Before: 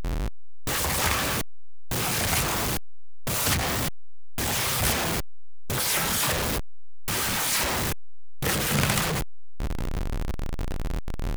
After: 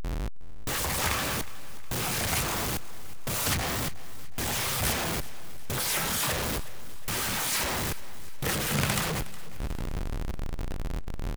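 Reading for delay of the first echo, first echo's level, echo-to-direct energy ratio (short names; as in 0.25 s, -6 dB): 0.364 s, -18.0 dB, -17.0 dB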